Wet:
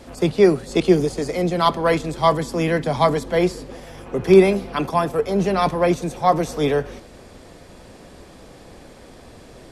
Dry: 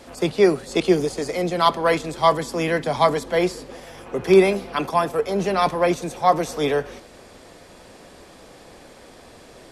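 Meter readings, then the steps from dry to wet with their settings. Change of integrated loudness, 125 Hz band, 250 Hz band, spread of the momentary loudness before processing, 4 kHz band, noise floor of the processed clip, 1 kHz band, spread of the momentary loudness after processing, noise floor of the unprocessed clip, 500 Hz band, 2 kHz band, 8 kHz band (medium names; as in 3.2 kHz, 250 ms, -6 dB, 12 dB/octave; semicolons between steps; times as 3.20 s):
+1.5 dB, +5.5 dB, +3.0 dB, 8 LU, -1.0 dB, -44 dBFS, 0.0 dB, 9 LU, -47 dBFS, +1.5 dB, -1.0 dB, -1.0 dB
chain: bass shelf 270 Hz +9 dB; trim -1 dB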